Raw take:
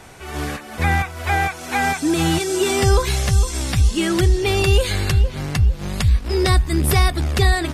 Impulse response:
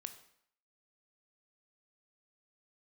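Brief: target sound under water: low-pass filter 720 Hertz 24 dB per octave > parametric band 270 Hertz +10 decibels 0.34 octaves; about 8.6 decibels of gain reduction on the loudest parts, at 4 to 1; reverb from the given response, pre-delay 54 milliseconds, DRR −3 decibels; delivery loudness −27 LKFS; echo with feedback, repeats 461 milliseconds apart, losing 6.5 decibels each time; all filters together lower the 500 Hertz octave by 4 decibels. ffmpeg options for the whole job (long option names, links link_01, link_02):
-filter_complex "[0:a]equalizer=frequency=500:width_type=o:gain=-8,acompressor=threshold=-21dB:ratio=4,aecho=1:1:461|922|1383|1844|2305|2766:0.473|0.222|0.105|0.0491|0.0231|0.0109,asplit=2[link_01][link_02];[1:a]atrim=start_sample=2205,adelay=54[link_03];[link_02][link_03]afir=irnorm=-1:irlink=0,volume=7dB[link_04];[link_01][link_04]amix=inputs=2:normalize=0,lowpass=frequency=720:width=0.5412,lowpass=frequency=720:width=1.3066,equalizer=frequency=270:width_type=o:width=0.34:gain=10,volume=-6dB"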